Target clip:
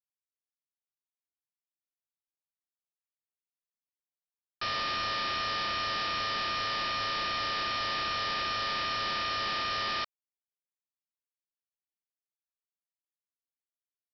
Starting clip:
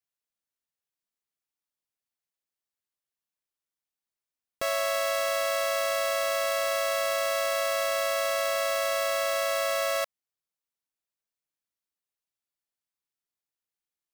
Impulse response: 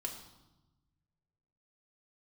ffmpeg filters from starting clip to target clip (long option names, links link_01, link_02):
-af "lowshelf=frequency=74:gain=10,bandreject=frequency=60:width_type=h:width=6,bandreject=frequency=120:width_type=h:width=6,acrusher=bits=7:dc=4:mix=0:aa=0.000001,aresample=11025,aeval=exprs='(mod(22.4*val(0)+1,2)-1)/22.4':channel_layout=same,aresample=44100"